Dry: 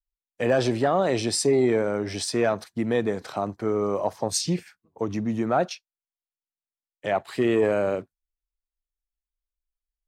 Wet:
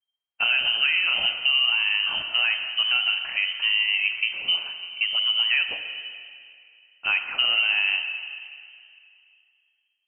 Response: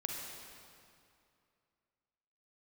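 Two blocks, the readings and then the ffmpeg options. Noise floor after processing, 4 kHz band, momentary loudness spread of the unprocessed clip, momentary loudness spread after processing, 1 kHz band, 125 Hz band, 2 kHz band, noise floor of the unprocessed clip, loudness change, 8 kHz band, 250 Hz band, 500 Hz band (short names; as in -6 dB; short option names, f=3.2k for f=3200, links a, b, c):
-76 dBFS, +16.5 dB, 9 LU, 13 LU, -8.5 dB, under -25 dB, +13.5 dB, under -85 dBFS, +3.5 dB, under -40 dB, under -30 dB, -25.5 dB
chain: -filter_complex "[0:a]acompressor=threshold=-23dB:ratio=6,asplit=2[a][b];[1:a]atrim=start_sample=2205[c];[b][c]afir=irnorm=-1:irlink=0,volume=-0.5dB[d];[a][d]amix=inputs=2:normalize=0,lowpass=f=2.7k:t=q:w=0.5098,lowpass=f=2.7k:t=q:w=0.6013,lowpass=f=2.7k:t=q:w=0.9,lowpass=f=2.7k:t=q:w=2.563,afreqshift=-3200,volume=-1dB"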